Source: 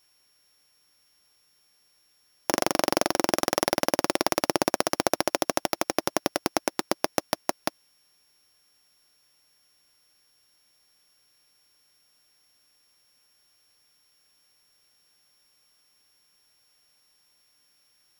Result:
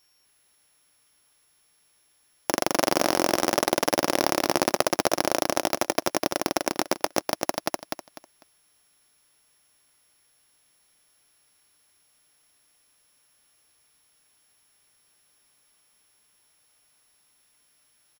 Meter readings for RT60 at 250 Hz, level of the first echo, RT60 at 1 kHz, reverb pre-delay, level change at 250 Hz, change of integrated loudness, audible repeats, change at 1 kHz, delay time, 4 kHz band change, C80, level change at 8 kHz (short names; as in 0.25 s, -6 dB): none, -3.5 dB, none, none, +1.5 dB, +1.5 dB, 3, +1.5 dB, 0.249 s, +1.5 dB, none, +1.5 dB